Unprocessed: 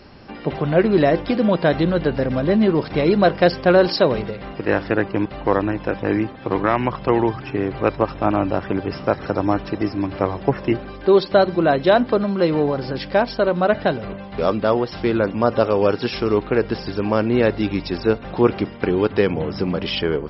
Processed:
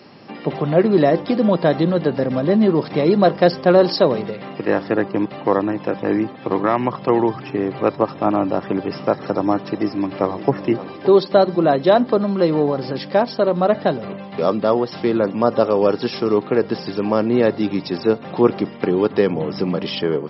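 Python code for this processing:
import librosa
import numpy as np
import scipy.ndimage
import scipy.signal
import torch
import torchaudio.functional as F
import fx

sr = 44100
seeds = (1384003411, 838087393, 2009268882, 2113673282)

y = fx.echo_throw(x, sr, start_s=9.62, length_s=0.91, ms=570, feedback_pct=45, wet_db=-14.5)
y = scipy.signal.sosfilt(scipy.signal.butter(4, 130.0, 'highpass', fs=sr, output='sos'), y)
y = fx.notch(y, sr, hz=1500.0, q=9.9)
y = fx.dynamic_eq(y, sr, hz=2500.0, q=1.5, threshold_db=-39.0, ratio=4.0, max_db=-6)
y = y * 10.0 ** (1.5 / 20.0)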